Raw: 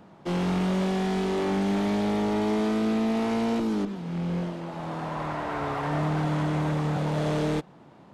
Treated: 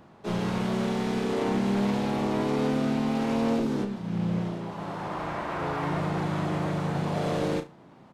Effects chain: harmony voices -7 st -9 dB, +3 st -3 dB; flutter echo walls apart 6 m, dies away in 0.23 s; trim -3.5 dB

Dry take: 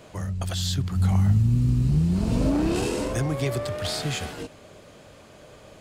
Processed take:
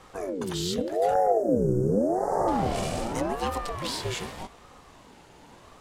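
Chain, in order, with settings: 1.14–2.48 s: elliptic band-stop 1.3–6 kHz, stop band 40 dB; de-hum 110.8 Hz, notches 32; ring modulator with a swept carrier 450 Hz, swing 45%, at 0.85 Hz

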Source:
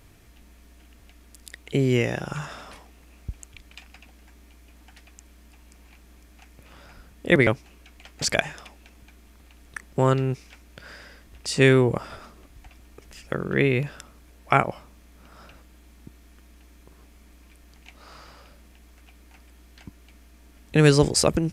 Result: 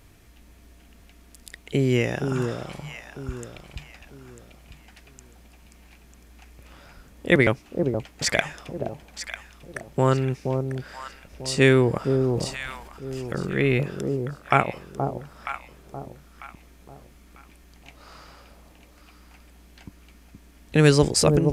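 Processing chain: echo whose repeats swap between lows and highs 473 ms, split 870 Hz, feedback 55%, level -5 dB; 12.21–13.78 s: transient shaper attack -5 dB, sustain +7 dB

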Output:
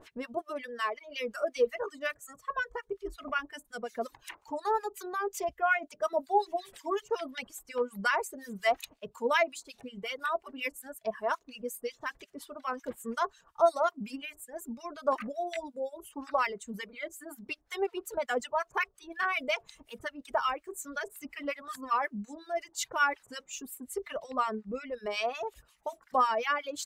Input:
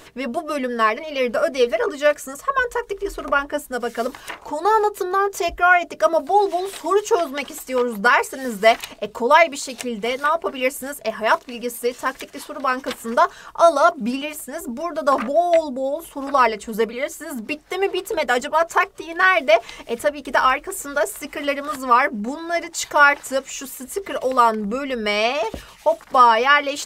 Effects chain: reverb removal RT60 1.9 s; 0.41–1.56 s: bass shelf 250 Hz -9 dB; harmonic tremolo 5.5 Hz, depth 100%, crossover 1.2 kHz; 24.24–24.94 s: distance through air 66 m; trim -7.5 dB

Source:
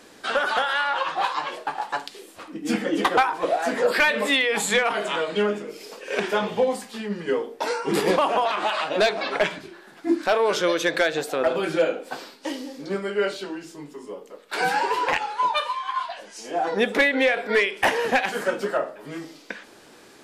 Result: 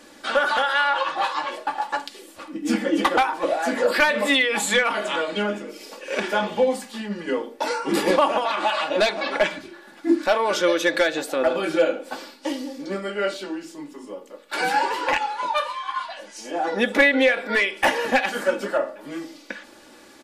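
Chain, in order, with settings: comb 3.5 ms, depth 56%

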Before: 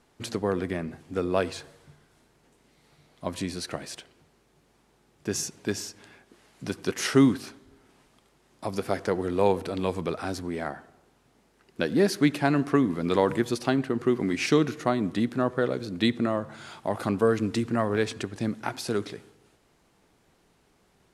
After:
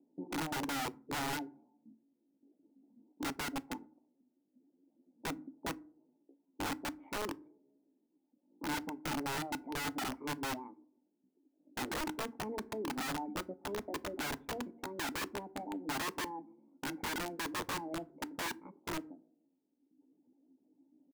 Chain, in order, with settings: high-pass 110 Hz 24 dB/octave; hum notches 50/100/150/200/250 Hz; level-controlled noise filter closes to 360 Hz, open at -18.5 dBFS; reverb removal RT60 1.3 s; peaking EQ 170 Hz +8 dB 0.28 oct; compression 6:1, threshold -29 dBFS, peak gain reduction 14.5 dB; overload inside the chain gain 21.5 dB; pitch shift +7.5 st; cascade formant filter u; integer overflow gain 38.5 dB; FDN reverb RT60 0.35 s, low-frequency decay 1.35×, high-frequency decay 0.55×, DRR 16 dB; trim +6 dB

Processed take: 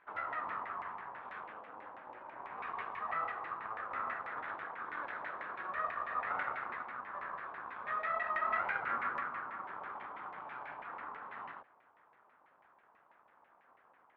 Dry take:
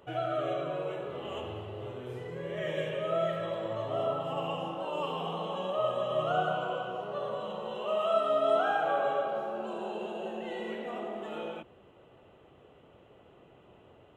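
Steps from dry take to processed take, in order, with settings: full-wave rectifier; band-pass filter 1.5 kHz, Q 0.58; LFO low-pass saw down 6.1 Hz 880–2100 Hz; trim -5 dB

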